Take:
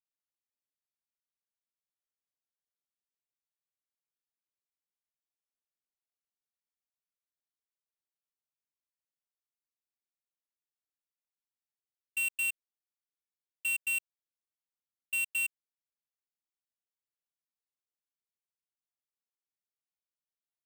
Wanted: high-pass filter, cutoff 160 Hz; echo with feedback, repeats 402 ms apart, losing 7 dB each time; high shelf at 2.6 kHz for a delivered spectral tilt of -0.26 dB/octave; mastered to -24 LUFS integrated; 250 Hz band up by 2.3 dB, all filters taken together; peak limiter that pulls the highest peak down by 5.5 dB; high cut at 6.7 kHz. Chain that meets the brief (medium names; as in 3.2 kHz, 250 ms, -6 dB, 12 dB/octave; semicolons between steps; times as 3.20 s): high-pass 160 Hz; low-pass 6.7 kHz; peaking EQ 250 Hz +4.5 dB; treble shelf 2.6 kHz -6 dB; peak limiter -37 dBFS; feedback delay 402 ms, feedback 45%, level -7 dB; trim +19 dB